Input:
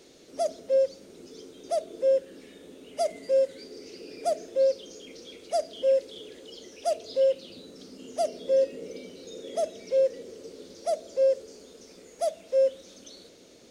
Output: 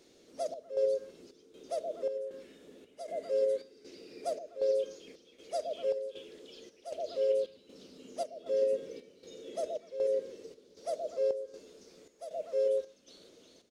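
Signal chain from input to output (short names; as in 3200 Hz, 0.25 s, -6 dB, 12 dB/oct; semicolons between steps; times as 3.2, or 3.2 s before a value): delay with a stepping band-pass 0.123 s, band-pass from 470 Hz, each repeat 1.4 oct, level -0.5 dB; chopper 1.3 Hz, depth 65%, duty 70%; harmoniser -4 st -9 dB; gain -8.5 dB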